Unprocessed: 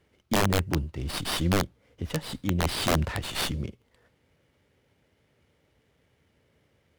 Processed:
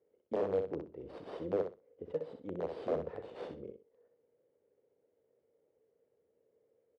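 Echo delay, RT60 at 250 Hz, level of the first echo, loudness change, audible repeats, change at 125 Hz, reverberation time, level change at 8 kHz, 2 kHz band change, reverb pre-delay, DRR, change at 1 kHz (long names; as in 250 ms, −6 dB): 63 ms, no reverb audible, −7.0 dB, −10.5 dB, 2, −22.5 dB, no reverb audible, below −40 dB, −23.5 dB, no reverb audible, no reverb audible, −14.5 dB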